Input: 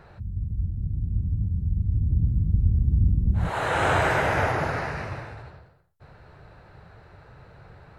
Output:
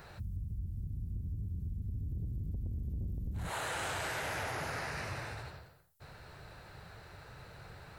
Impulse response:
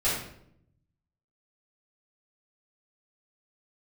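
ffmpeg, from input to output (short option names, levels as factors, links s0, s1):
-af "asoftclip=type=tanh:threshold=0.106,crystalizer=i=5:c=0,acompressor=threshold=0.0251:ratio=6,volume=0.631"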